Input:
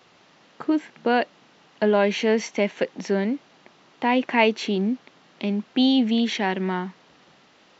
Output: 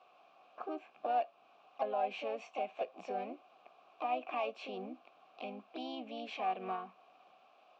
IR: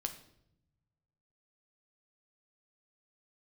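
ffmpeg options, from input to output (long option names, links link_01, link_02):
-filter_complex "[0:a]acontrast=83,asplit=2[link_01][link_02];[link_02]asetrate=55563,aresample=44100,atempo=0.793701,volume=-6dB[link_03];[link_01][link_03]amix=inputs=2:normalize=0,alimiter=limit=-10dB:level=0:latency=1:release=304,asplit=3[link_04][link_05][link_06];[link_04]bandpass=frequency=730:width_type=q:width=8,volume=0dB[link_07];[link_05]bandpass=frequency=1090:width_type=q:width=8,volume=-6dB[link_08];[link_06]bandpass=frequency=2440:width_type=q:width=8,volume=-9dB[link_09];[link_07][link_08][link_09]amix=inputs=3:normalize=0,asplit=2[link_10][link_11];[1:a]atrim=start_sample=2205,atrim=end_sample=3087,adelay=16[link_12];[link_11][link_12]afir=irnorm=-1:irlink=0,volume=-13.5dB[link_13];[link_10][link_13]amix=inputs=2:normalize=0,volume=-5.5dB"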